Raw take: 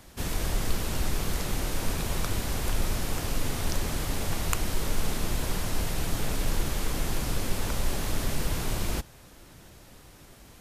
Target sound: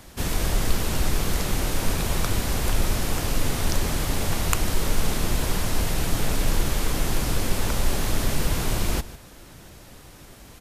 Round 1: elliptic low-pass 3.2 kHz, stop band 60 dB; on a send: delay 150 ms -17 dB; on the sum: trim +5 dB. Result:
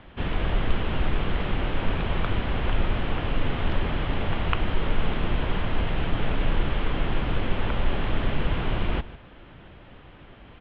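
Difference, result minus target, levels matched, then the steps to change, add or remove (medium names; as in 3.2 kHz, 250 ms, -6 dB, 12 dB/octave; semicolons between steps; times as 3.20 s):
4 kHz band -2.5 dB
remove: elliptic low-pass 3.2 kHz, stop band 60 dB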